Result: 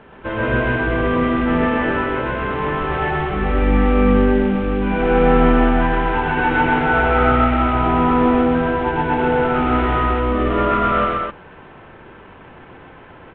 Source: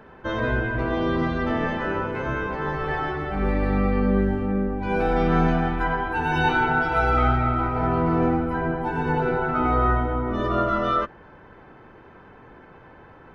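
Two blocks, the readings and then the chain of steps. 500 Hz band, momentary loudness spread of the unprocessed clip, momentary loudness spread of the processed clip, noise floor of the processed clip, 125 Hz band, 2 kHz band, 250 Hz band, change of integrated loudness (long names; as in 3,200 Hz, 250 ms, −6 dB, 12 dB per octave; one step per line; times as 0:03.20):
+7.0 dB, 6 LU, 6 LU, −42 dBFS, +3.5 dB, +5.5 dB, +7.0 dB, +6.0 dB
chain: variable-slope delta modulation 16 kbit/s
loudspeakers that aren't time-aligned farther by 43 metres −1 dB, 86 metres −3 dB
level +3 dB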